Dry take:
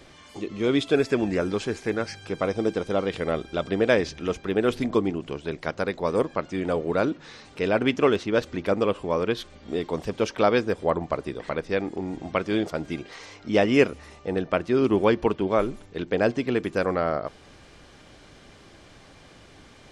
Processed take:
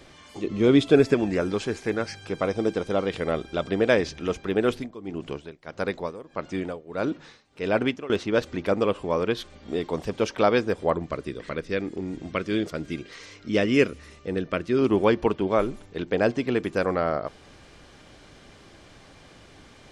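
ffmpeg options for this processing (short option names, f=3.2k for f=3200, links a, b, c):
-filter_complex "[0:a]asettb=1/sr,asplit=3[a][b][c];[a]atrim=end=0.444[d];[b]atrim=start=0.44:end=1.14,asetpts=PTS-STARTPTS,afade=t=in:d=0.004:c=qsin,afade=t=out:st=0.696:d=0.004:c=qsin,lowshelf=f=500:g=7[e];[c]atrim=start=1.136[f];[d][e]acrossfade=d=0.004:c1=hsin:c2=qsin[g];[g][f]acrossfade=d=0.004:c1=qsin:c2=hsin,asettb=1/sr,asplit=3[h][i][j];[h]atrim=end=4.654[k];[i]atrim=start=4.65:end=8.1,asetpts=PTS-STARTPTS,afade=t=in:d=0.004:c=qsin,afade=t=out:st=3.446:d=0.004:c=qsin,tremolo=f=1.6:d=0.89[l];[j]atrim=start=8.096[m];[k][l]acrossfade=d=0.004:c1=hsin:c2=qsin[n];[n][m]acrossfade=d=0.004:c1=qsin:c2=hsin,asettb=1/sr,asplit=3[o][p][q];[o]atrim=end=10.964[r];[p]atrim=start=10.96:end=14.79,asetpts=PTS-STARTPTS,afade=t=in:d=0.004:c=qsin,afade=t=out:st=3.826:d=0.004:c=qsin,equalizer=f=800:t=o:w=0.69:g=-11.5[s];[q]atrim=start=14.786[t];[r][s]acrossfade=d=0.004:c1=hsin:c2=qsin[u];[u][t]acrossfade=d=0.004:c1=qsin:c2=hsin"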